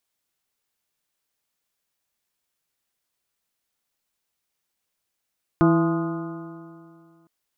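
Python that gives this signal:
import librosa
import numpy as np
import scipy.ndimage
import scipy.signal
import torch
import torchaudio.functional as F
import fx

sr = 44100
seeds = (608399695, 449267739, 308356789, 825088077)

y = fx.additive_stiff(sr, length_s=1.66, hz=164.0, level_db=-17.5, upper_db=(3, -16, -7.5, -13.5, -10.5, -8, -15), decay_s=2.29, stiffness=0.0033)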